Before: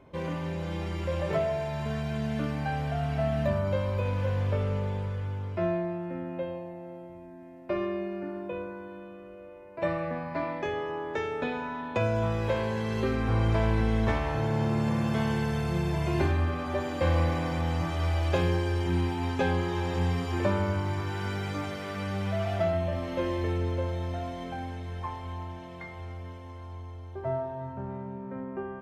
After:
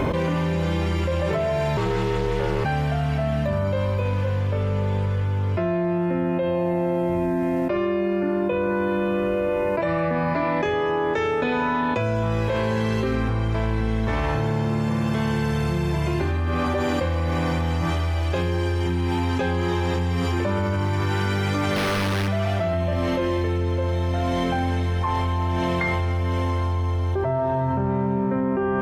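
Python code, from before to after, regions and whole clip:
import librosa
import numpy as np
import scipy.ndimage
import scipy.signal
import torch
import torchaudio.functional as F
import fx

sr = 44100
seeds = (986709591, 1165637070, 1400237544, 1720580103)

y = fx.chain(x, sr, fx.ring_mod(carrier_hz=260.0),
    fx.doppler_dist(depth_ms=0.13), at=(1.77, 2.65))
y = fx.chain(y, sr, fx.clip_1bit(),
    fx.resample_bad(factor=6, down='none', up='hold'),
    fx.high_shelf(hz=7000.0, db=-12.0), at=(21.76, 22.28))
y = fx.peak_eq(y, sr, hz=700.0, db=-3.5, octaves=0.31)
y = fx.env_flatten(y, sr, amount_pct=100)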